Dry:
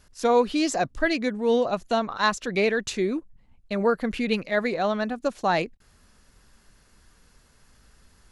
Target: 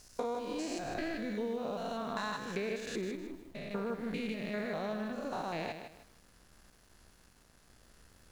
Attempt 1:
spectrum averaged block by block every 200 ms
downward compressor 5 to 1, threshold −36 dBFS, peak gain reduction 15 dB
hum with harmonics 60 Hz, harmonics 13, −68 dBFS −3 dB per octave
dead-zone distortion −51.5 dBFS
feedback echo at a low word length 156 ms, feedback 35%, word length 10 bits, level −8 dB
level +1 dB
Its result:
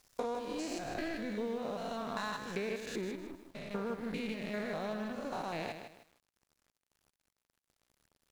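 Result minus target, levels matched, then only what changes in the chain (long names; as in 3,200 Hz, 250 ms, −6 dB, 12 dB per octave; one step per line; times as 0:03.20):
dead-zone distortion: distortion +9 dB
change: dead-zone distortion −61.5 dBFS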